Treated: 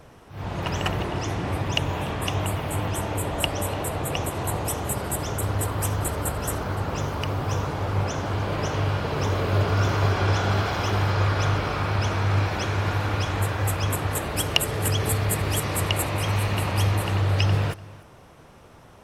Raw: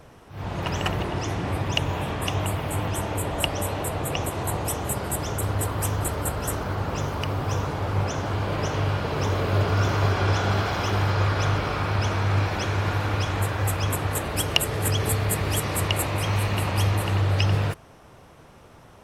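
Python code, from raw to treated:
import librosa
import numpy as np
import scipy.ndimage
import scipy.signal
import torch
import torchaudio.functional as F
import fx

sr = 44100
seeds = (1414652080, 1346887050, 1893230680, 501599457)

y = x + 10.0 ** (-20.5 / 20.0) * np.pad(x, (int(294 * sr / 1000.0), 0))[:len(x)]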